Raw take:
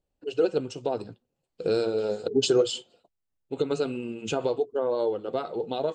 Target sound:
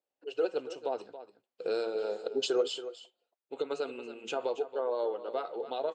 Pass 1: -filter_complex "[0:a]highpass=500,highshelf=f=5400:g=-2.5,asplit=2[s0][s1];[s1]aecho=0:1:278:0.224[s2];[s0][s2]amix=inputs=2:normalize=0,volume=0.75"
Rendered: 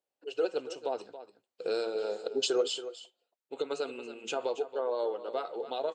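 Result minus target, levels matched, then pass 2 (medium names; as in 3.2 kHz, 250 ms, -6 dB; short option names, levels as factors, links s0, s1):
8 kHz band +5.0 dB
-filter_complex "[0:a]highpass=500,highshelf=f=5400:g=-11.5,asplit=2[s0][s1];[s1]aecho=0:1:278:0.224[s2];[s0][s2]amix=inputs=2:normalize=0,volume=0.75"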